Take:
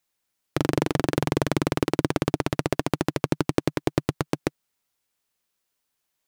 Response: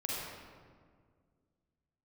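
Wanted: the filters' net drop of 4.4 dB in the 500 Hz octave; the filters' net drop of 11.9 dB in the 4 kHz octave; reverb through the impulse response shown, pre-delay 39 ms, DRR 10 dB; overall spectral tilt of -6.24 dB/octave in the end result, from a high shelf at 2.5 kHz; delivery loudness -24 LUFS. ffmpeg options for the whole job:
-filter_complex "[0:a]equalizer=f=500:t=o:g=-5.5,highshelf=f=2500:g=-9,equalizer=f=4000:t=o:g=-8,asplit=2[s0][s1];[1:a]atrim=start_sample=2205,adelay=39[s2];[s1][s2]afir=irnorm=-1:irlink=0,volume=0.2[s3];[s0][s3]amix=inputs=2:normalize=0,volume=1.68"

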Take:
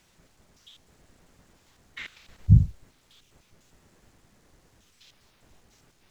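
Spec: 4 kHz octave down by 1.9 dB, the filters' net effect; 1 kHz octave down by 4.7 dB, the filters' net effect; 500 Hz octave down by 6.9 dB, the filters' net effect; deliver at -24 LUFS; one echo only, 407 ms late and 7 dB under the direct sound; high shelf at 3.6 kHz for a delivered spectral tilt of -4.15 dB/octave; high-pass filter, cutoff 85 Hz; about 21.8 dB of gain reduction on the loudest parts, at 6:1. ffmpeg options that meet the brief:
-af "highpass=85,equalizer=f=500:t=o:g=-9,equalizer=f=1000:t=o:g=-4.5,highshelf=f=3600:g=5.5,equalizer=f=4000:t=o:g=-5.5,acompressor=threshold=0.0141:ratio=6,aecho=1:1:407:0.447,volume=16.8"

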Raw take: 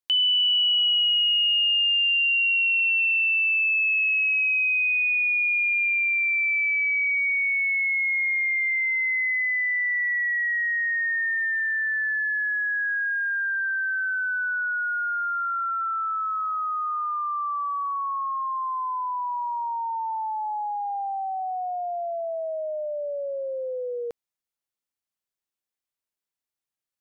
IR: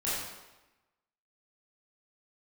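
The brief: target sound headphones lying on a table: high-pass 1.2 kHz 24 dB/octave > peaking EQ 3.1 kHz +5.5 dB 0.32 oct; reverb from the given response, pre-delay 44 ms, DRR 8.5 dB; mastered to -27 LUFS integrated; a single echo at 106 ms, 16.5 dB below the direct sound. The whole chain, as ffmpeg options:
-filter_complex "[0:a]aecho=1:1:106:0.15,asplit=2[s0][s1];[1:a]atrim=start_sample=2205,adelay=44[s2];[s1][s2]afir=irnorm=-1:irlink=0,volume=0.158[s3];[s0][s3]amix=inputs=2:normalize=0,highpass=f=1200:w=0.5412,highpass=f=1200:w=1.3066,equalizer=f=3100:t=o:w=0.32:g=5.5,volume=0.398"

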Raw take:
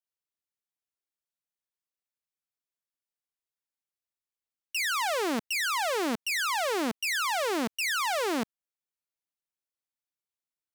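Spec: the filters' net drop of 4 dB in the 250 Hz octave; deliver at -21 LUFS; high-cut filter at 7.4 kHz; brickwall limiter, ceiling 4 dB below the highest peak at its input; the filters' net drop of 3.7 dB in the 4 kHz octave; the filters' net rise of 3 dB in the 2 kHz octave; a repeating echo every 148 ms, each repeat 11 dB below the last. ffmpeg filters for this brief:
-af "lowpass=7400,equalizer=f=250:t=o:g=-5,equalizer=f=2000:t=o:g=5.5,equalizer=f=4000:t=o:g=-7,alimiter=limit=0.0631:level=0:latency=1,aecho=1:1:148|296|444:0.282|0.0789|0.0221,volume=2.51"

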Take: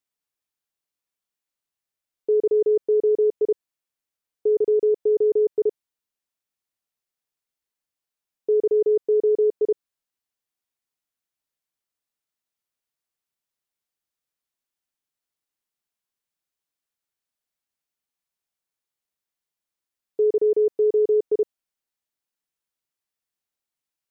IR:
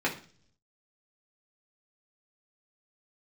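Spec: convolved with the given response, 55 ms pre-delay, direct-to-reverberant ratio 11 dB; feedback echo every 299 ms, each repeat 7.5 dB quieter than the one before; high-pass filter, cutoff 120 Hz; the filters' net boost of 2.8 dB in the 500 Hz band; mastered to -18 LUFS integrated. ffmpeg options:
-filter_complex "[0:a]highpass=120,equalizer=f=500:t=o:g=3.5,aecho=1:1:299|598|897|1196|1495:0.422|0.177|0.0744|0.0312|0.0131,asplit=2[s0][s1];[1:a]atrim=start_sample=2205,adelay=55[s2];[s1][s2]afir=irnorm=-1:irlink=0,volume=0.0891[s3];[s0][s3]amix=inputs=2:normalize=0,volume=1.12"

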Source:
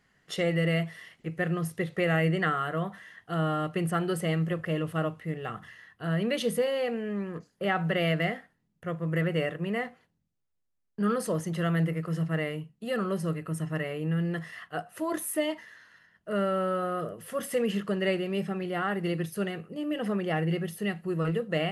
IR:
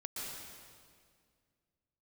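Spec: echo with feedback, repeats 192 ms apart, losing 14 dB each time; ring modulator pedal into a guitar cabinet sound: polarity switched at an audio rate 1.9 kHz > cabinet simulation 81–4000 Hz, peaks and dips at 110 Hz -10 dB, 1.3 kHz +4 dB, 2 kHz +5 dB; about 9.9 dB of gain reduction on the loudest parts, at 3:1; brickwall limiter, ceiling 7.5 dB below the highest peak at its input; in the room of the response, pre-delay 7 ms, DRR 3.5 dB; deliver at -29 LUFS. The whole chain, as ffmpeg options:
-filter_complex "[0:a]acompressor=threshold=0.0158:ratio=3,alimiter=level_in=2.37:limit=0.0631:level=0:latency=1,volume=0.422,aecho=1:1:192|384:0.2|0.0399,asplit=2[s0][s1];[1:a]atrim=start_sample=2205,adelay=7[s2];[s1][s2]afir=irnorm=-1:irlink=0,volume=0.631[s3];[s0][s3]amix=inputs=2:normalize=0,aeval=exprs='val(0)*sgn(sin(2*PI*1900*n/s))':c=same,highpass=81,equalizer=f=110:t=q:w=4:g=-10,equalizer=f=1300:t=q:w=4:g=4,equalizer=f=2000:t=q:w=4:g=5,lowpass=f=4000:w=0.5412,lowpass=f=4000:w=1.3066,volume=1.68"

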